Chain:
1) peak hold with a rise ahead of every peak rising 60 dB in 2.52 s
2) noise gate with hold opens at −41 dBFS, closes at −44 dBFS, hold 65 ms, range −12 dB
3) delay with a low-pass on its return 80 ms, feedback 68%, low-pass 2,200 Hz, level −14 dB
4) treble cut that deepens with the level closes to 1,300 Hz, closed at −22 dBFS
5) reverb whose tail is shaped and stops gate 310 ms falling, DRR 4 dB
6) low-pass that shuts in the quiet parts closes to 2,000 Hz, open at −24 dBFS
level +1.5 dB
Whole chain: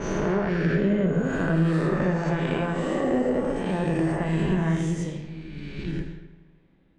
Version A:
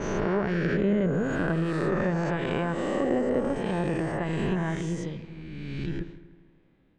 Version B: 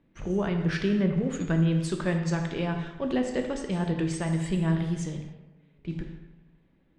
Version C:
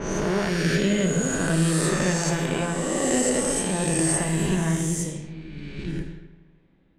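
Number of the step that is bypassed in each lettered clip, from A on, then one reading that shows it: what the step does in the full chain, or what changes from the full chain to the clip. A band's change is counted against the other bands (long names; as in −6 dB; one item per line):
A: 5, 125 Hz band −3.0 dB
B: 1, 8 kHz band +6.5 dB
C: 4, change in crest factor +4.0 dB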